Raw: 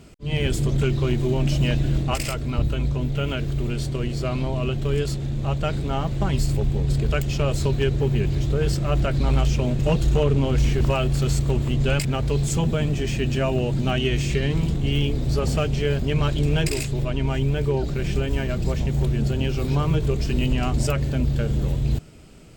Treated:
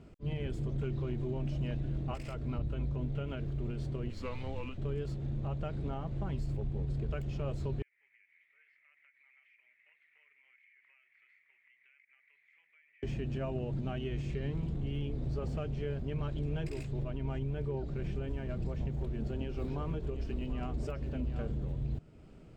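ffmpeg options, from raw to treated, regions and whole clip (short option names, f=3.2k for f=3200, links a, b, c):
-filter_complex "[0:a]asettb=1/sr,asplit=3[a][b][c];[a]atrim=end=4.104[d];[b]atrim=start=4.1:end=4.78,asetpts=PTS-STARTPTS,afade=t=in:d=0.004:c=qsin,afade=t=out:st=0.676:d=0.004:c=qsin,tiltshelf=f=1.1k:g=-5.5,afreqshift=-130[e];[c]atrim=start=4.776[f];[d][e]acrossfade=d=0.004:c1=hsin:c2=qsin[g];[g][f]acrossfade=d=0.004:c1=qsin:c2=hsin,asettb=1/sr,asplit=3[h][i][j];[h]atrim=end=7.824[k];[i]atrim=start=7.82:end=13.03,asetpts=PTS-STARTPTS,afade=t=in:d=0.004:c=qsin,afade=t=out:st=5.206:d=0.004:c=qsin,asuperpass=centerf=2100:order=4:qfactor=5.3,acompressor=threshold=-48dB:ratio=12:attack=3.2:release=140:knee=1:detection=peak[l];[j]atrim=start=13.026[m];[k][l]acrossfade=d=0.004:c1=hsin:c2=qsin[n];[n][m]acrossfade=d=0.004:c1=qsin:c2=hsin,asettb=1/sr,asplit=3[o][p][q];[o]atrim=end=18.964[r];[p]atrim=start=18.96:end=21.52,asetpts=PTS-STARTPTS,afade=t=in:d=0.004:c=qsin,afade=t=out:st=2.556:d=0.004:c=qsin,equalizer=f=130:t=o:w=0.48:g=-8.5,aecho=1:1:736:0.299,atrim=end_sample=112896[s];[q]atrim=start=21.516[t];[r][s]acrossfade=d=0.004:c1=hsin:c2=qsin[u];[u][t]acrossfade=d=0.004:c1=qsin:c2=hsin,alimiter=limit=-20dB:level=0:latency=1:release=341,lowpass=f=1.2k:p=1,volume=-6.5dB"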